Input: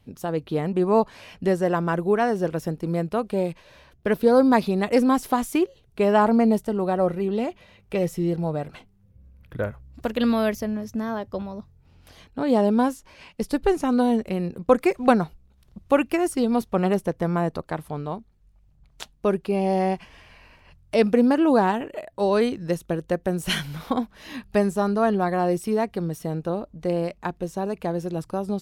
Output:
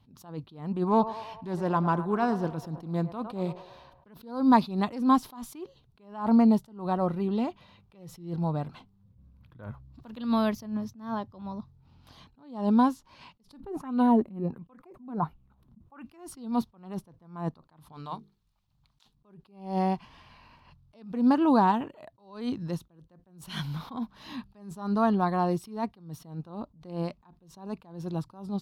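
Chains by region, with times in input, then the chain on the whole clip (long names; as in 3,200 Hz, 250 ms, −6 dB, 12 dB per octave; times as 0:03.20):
0:00.85–0:04.08: feedback echo with a band-pass in the loop 106 ms, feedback 67%, band-pass 800 Hz, level −12.5 dB + highs frequency-modulated by the lows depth 0.13 ms
0:13.60–0:16.04: parametric band 4,600 Hz −12 dB 1.6 octaves + auto-filter bell 1.4 Hz 210–3,000 Hz +14 dB
0:17.92–0:19.15: tilt shelving filter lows −7 dB, about 1,200 Hz + mains-hum notches 50/100/150/200/250/300/350/400/450 Hz
whole clip: octave-band graphic EQ 125/250/500/1,000/2,000/4,000/8,000 Hz +9/+7/−4/+12/−4/+9/−4 dB; level that may rise only so fast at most 120 dB per second; level −9 dB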